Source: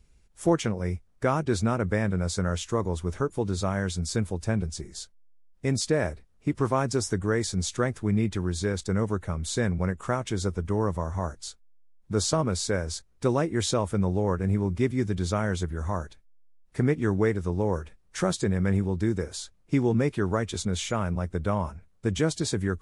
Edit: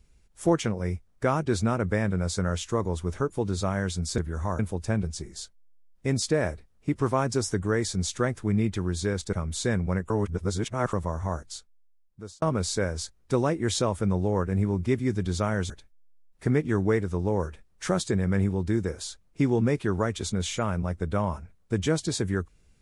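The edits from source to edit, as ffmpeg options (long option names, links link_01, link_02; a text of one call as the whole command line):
ffmpeg -i in.wav -filter_complex "[0:a]asplit=8[link_01][link_02][link_03][link_04][link_05][link_06][link_07][link_08];[link_01]atrim=end=4.182[link_09];[link_02]atrim=start=15.618:end=16.032[link_10];[link_03]atrim=start=4.178:end=8.922[link_11];[link_04]atrim=start=9.248:end=10.022[link_12];[link_05]atrim=start=10.018:end=10.852,asetpts=PTS-STARTPTS,areverse[link_13];[link_06]atrim=start=10.848:end=12.34,asetpts=PTS-STARTPTS,afade=type=out:start_time=0.502:duration=0.99[link_14];[link_07]atrim=start=12.34:end=15.622,asetpts=PTS-STARTPTS,afade=type=in:duration=0.004:curve=hsin[link_15];[link_08]atrim=start=16.028[link_16];[link_09][link_10]acrossfade=duration=0.004:curve1=hsin:curve2=hsin[link_17];[link_17][link_11]acrossfade=duration=0.004:curve1=hsin:curve2=hsin[link_18];[link_18][link_12]acrossfade=duration=0.004:curve1=hsin:curve2=hsin[link_19];[link_19][link_13]acrossfade=duration=0.004:curve1=hsin:curve2=hsin[link_20];[link_14][link_15]concat=n=2:v=0:a=1[link_21];[link_20][link_21]acrossfade=duration=0.004:curve1=hsin:curve2=hsin[link_22];[link_22][link_16]acrossfade=duration=0.004:curve1=hsin:curve2=hsin" out.wav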